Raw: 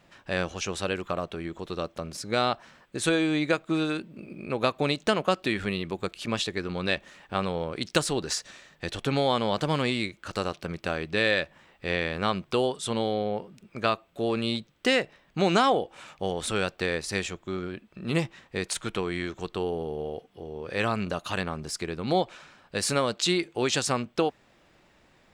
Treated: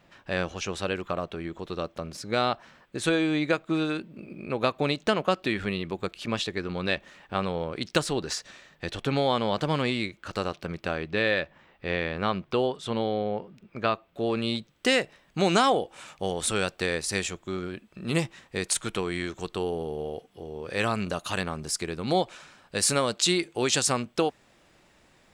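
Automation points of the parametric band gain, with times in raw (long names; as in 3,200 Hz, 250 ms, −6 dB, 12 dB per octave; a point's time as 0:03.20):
parametric band 9,600 Hz 1.4 octaves
0:10.79 −4.5 dB
0:11.19 −13.5 dB
0:13.90 −13.5 dB
0:14.30 −5 dB
0:14.98 +7 dB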